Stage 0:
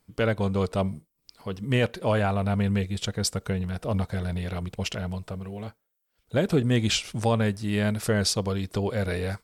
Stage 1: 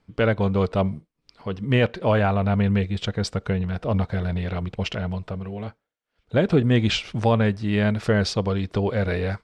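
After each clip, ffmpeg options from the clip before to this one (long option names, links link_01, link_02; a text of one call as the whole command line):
ffmpeg -i in.wav -af "lowpass=3600,volume=4dB" out.wav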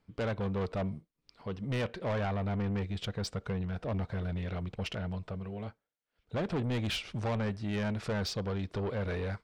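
ffmpeg -i in.wav -af "asoftclip=type=tanh:threshold=-21.5dB,volume=-7dB" out.wav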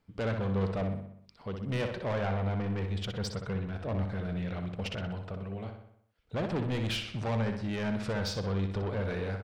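ffmpeg -i in.wav -filter_complex "[0:a]asplit=2[link_01][link_02];[link_02]adelay=62,lowpass=frequency=4800:poles=1,volume=-6dB,asplit=2[link_03][link_04];[link_04]adelay=62,lowpass=frequency=4800:poles=1,volume=0.55,asplit=2[link_05][link_06];[link_06]adelay=62,lowpass=frequency=4800:poles=1,volume=0.55,asplit=2[link_07][link_08];[link_08]adelay=62,lowpass=frequency=4800:poles=1,volume=0.55,asplit=2[link_09][link_10];[link_10]adelay=62,lowpass=frequency=4800:poles=1,volume=0.55,asplit=2[link_11][link_12];[link_12]adelay=62,lowpass=frequency=4800:poles=1,volume=0.55,asplit=2[link_13][link_14];[link_14]adelay=62,lowpass=frequency=4800:poles=1,volume=0.55[link_15];[link_01][link_03][link_05][link_07][link_09][link_11][link_13][link_15]amix=inputs=8:normalize=0" out.wav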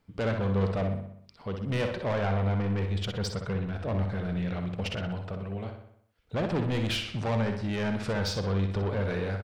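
ffmpeg -i in.wav -filter_complex "[0:a]asplit=2[link_01][link_02];[link_02]adelay=50,volume=-13.5dB[link_03];[link_01][link_03]amix=inputs=2:normalize=0,volume=3dB" out.wav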